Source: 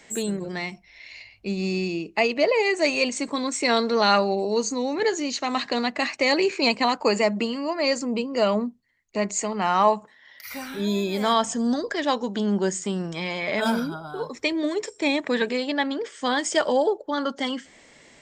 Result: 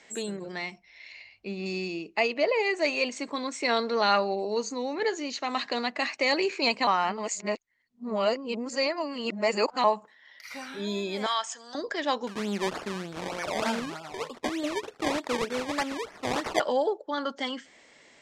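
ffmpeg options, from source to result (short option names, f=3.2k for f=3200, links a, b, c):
-filter_complex "[0:a]asettb=1/sr,asplit=3[a][b][c];[a]atrim=end=1.124[d];[b]atrim=start=1.12:end=1.66,asetpts=PTS-STARTPTS,afade=t=in:d=0.004:c=qsin,afade=t=out:st=0.536:d=0.004:c=qsin,acrossover=split=3700[e][f];[f]acompressor=threshold=-54dB:ratio=4:attack=1:release=60[g];[e][g]amix=inputs=2:normalize=0[h];[c]atrim=start=1.656[i];[d][h]acrossfade=d=0.004:c1=hsin:c2=qsin[j];[j][i]acrossfade=d=0.004:c1=qsin:c2=hsin,asettb=1/sr,asplit=3[k][l][m];[k]atrim=end=2.294[n];[l]atrim=start=2.29:end=5.49,asetpts=PTS-STARTPTS,afade=t=in:d=0.004:c=qsin,afade=t=out:st=3.196:d=0.004:c=qsin,highshelf=f=6.8k:g=-7[o];[m]atrim=start=5.486[p];[n][o]acrossfade=d=0.004:c1=hsin:c2=qsin[q];[q][p]acrossfade=d=0.004:c1=qsin:c2=hsin,asettb=1/sr,asplit=3[r][s][t];[r]atrim=end=11.264[u];[s]atrim=start=11.26:end=11.75,asetpts=PTS-STARTPTS,afade=t=in:d=0.004:c=qsin,afade=t=out:st=0.486:d=0.004:c=qsin,highpass=1.1k[v];[t]atrim=start=11.746[w];[u][v]acrossfade=d=0.004:c1=hsin:c2=qsin[x];[x][w]acrossfade=d=0.004:c1=qsin:c2=hsin,asettb=1/sr,asplit=3[y][z][aa];[y]atrim=end=12.274[ab];[z]atrim=start=12.27:end=16.6,asetpts=PTS-STARTPTS,afade=t=in:d=0.004:c=qsin,afade=t=out:st=4.326:d=0.004:c=qsin,acrusher=samples=22:mix=1:aa=0.000001:lfo=1:lforange=22:lforate=3.3[ac];[aa]atrim=start=16.596[ad];[ab][ac]acrossfade=d=0.004:c1=hsin:c2=qsin[ae];[ae][ad]acrossfade=d=0.004:c1=qsin:c2=hsin,asplit=3[af][ag][ah];[af]atrim=end=6.872[ai];[ag]atrim=start=6.868:end=9.842,asetpts=PTS-STARTPTS,areverse[aj];[ah]atrim=start=9.838[ak];[ai][aj]acrossfade=d=0.004:c1=hsin:c2=hsin[al];[al][ak]acrossfade=d=0.004:c1=hsin:c2=hsin,lowpass=7k,lowshelf=f=200:g=-11.5,volume=-3dB"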